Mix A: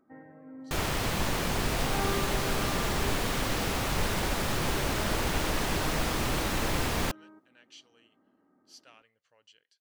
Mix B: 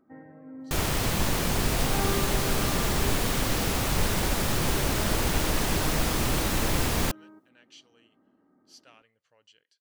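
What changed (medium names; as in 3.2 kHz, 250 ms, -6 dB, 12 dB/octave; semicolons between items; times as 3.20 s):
second sound: add treble shelf 5.3 kHz +7.5 dB; master: add bass shelf 410 Hz +4.5 dB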